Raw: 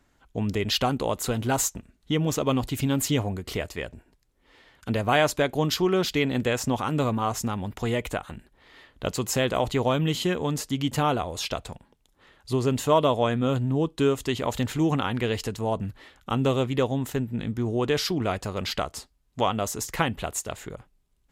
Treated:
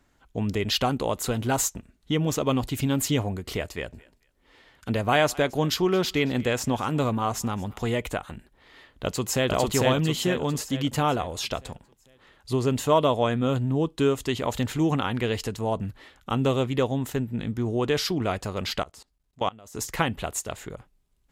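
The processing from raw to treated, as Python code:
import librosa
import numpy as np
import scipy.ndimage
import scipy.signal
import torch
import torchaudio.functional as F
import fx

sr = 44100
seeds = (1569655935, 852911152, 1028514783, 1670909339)

y = fx.echo_thinned(x, sr, ms=222, feedback_pct=24, hz=660.0, wet_db=-21, at=(3.72, 7.99))
y = fx.echo_throw(y, sr, start_s=9.04, length_s=0.45, ms=450, feedback_pct=45, wet_db=-0.5)
y = fx.level_steps(y, sr, step_db=24, at=(18.83, 19.75))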